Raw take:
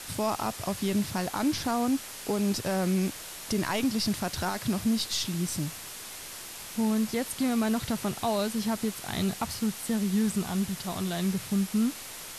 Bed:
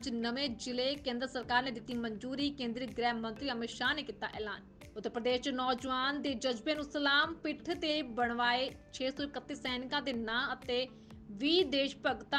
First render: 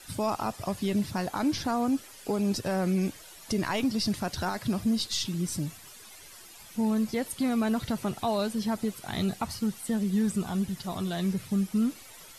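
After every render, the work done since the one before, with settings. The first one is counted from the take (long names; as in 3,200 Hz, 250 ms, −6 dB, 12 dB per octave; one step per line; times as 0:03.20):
broadband denoise 12 dB, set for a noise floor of −42 dBFS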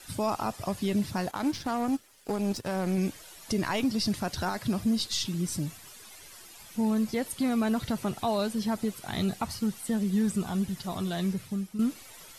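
0:01.31–0:02.98: power curve on the samples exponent 1.4
0:11.21–0:11.79: fade out, to −10.5 dB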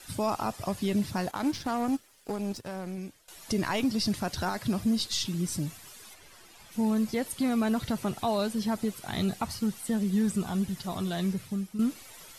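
0:01.90–0:03.28: fade out, to −17.5 dB
0:06.13–0:06.71: high-shelf EQ 3,700 Hz → 6,400 Hz −9.5 dB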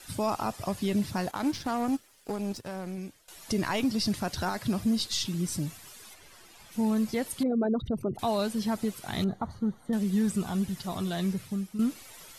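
0:07.43–0:08.19: spectral envelope exaggerated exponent 3
0:09.24–0:09.93: moving average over 17 samples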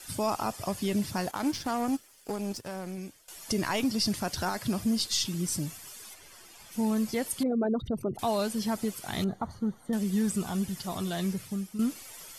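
bass and treble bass −2 dB, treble +4 dB
notch filter 3,900 Hz, Q 14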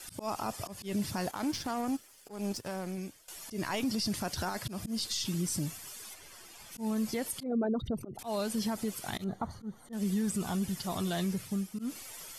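volume swells 169 ms
brickwall limiter −24 dBFS, peak gain reduction 8 dB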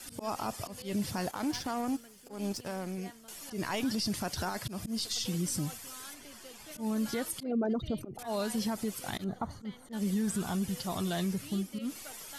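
mix in bed −18 dB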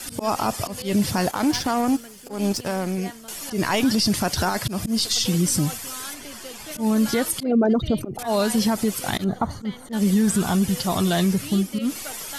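level +12 dB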